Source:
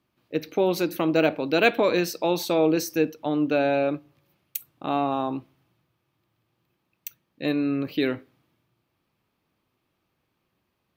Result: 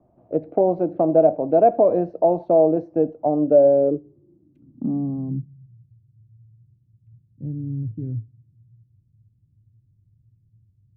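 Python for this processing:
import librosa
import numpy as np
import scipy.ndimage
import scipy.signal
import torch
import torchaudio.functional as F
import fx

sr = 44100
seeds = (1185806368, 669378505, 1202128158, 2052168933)

y = fx.filter_sweep_lowpass(x, sr, from_hz=680.0, to_hz=110.0, start_s=3.36, end_s=5.88, q=6.6)
y = fx.tilt_eq(y, sr, slope=-2.5)
y = fx.band_squash(y, sr, depth_pct=40)
y = y * librosa.db_to_amplitude(-5.0)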